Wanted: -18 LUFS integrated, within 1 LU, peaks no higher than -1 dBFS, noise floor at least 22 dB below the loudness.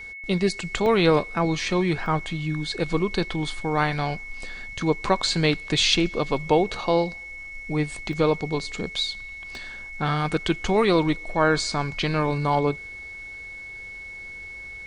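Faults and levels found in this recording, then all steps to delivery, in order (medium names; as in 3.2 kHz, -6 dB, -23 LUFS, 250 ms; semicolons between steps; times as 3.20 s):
dropouts 4; longest dropout 1.1 ms; steady tone 2.2 kHz; tone level -36 dBFS; loudness -24.0 LUFS; peak level -5.5 dBFS; loudness target -18.0 LUFS
-> interpolate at 0.86/2.06/8.13/9.55 s, 1.1 ms; band-stop 2.2 kHz, Q 30; trim +6 dB; peak limiter -1 dBFS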